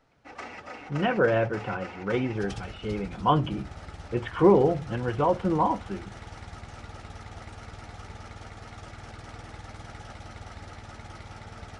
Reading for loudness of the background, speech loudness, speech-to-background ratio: -43.0 LUFS, -26.0 LUFS, 17.0 dB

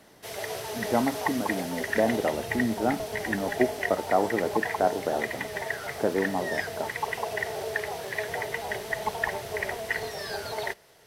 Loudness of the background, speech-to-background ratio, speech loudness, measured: -32.0 LUFS, 2.5 dB, -29.5 LUFS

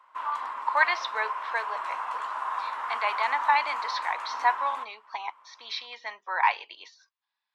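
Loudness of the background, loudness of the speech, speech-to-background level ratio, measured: -33.0 LUFS, -29.0 LUFS, 4.0 dB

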